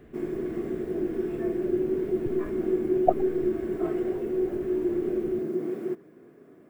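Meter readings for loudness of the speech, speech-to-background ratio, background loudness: -35.5 LUFS, -7.0 dB, -28.5 LUFS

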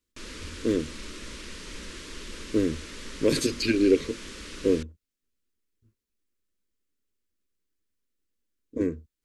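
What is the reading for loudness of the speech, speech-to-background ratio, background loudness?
-27.0 LUFS, 13.5 dB, -40.5 LUFS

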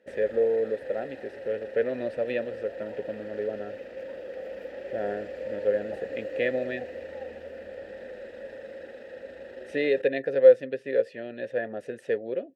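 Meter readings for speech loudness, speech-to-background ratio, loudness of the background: -28.0 LUFS, 11.5 dB, -39.5 LUFS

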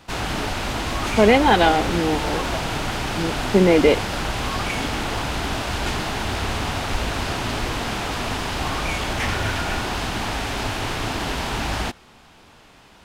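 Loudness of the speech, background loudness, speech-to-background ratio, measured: -18.0 LUFS, -25.0 LUFS, 7.0 dB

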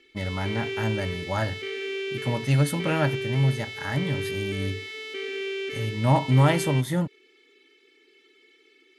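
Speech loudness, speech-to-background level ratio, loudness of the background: -26.0 LUFS, 6.5 dB, -32.5 LUFS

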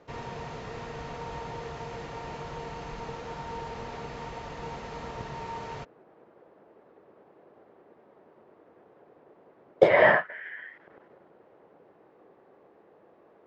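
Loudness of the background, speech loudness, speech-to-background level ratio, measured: -39.0 LUFS, -23.0 LUFS, 16.0 dB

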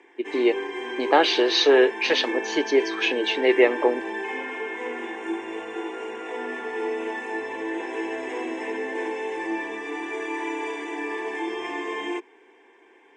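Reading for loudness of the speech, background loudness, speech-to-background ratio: -21.0 LUFS, -30.5 LUFS, 9.5 dB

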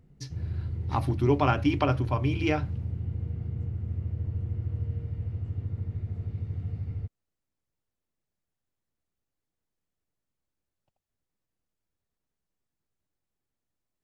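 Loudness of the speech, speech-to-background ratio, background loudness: -27.0 LUFS, 7.0 dB, -34.0 LUFS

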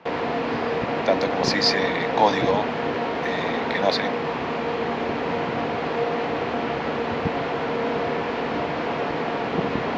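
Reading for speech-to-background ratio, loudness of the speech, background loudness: 1.0 dB, -24.5 LUFS, -25.5 LUFS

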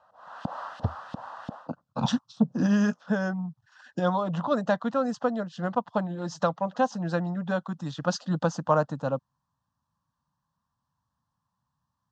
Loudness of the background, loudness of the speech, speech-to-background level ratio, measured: -40.0 LUFS, -28.5 LUFS, 11.5 dB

